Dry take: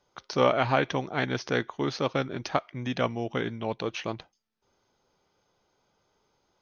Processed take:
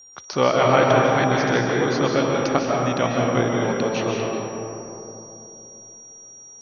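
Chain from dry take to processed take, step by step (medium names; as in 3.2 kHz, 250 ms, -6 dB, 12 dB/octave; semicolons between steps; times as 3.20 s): whistle 5.7 kHz -48 dBFS; algorithmic reverb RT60 3.3 s, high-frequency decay 0.3×, pre-delay 110 ms, DRR -3 dB; trim +3.5 dB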